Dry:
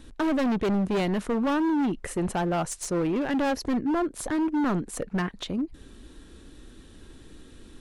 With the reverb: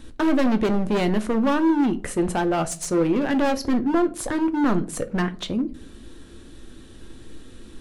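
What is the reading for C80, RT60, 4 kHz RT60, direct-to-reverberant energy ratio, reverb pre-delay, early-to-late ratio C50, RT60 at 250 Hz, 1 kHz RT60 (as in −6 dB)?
24.0 dB, 0.45 s, 0.25 s, 9.0 dB, 8 ms, 19.0 dB, 0.60 s, 0.40 s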